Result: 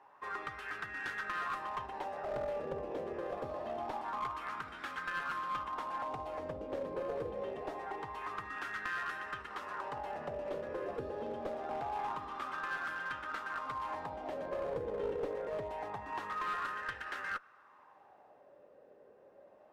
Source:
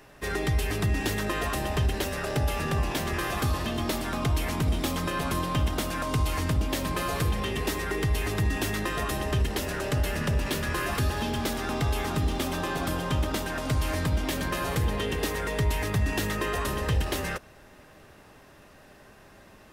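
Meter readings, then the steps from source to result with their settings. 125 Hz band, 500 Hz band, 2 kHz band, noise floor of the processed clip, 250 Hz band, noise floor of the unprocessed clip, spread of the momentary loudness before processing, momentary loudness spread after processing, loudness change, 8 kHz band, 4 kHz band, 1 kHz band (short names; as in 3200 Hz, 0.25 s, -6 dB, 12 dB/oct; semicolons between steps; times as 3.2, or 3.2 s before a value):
-27.0 dB, -7.0 dB, -7.5 dB, -62 dBFS, -18.0 dB, -53 dBFS, 2 LU, 5 LU, -11.0 dB, under -25 dB, -19.0 dB, -5.0 dB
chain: wah 0.25 Hz 500–1500 Hz, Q 4.7; one-sided clip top -37 dBFS; notch 650 Hz, Q 13; gain +3 dB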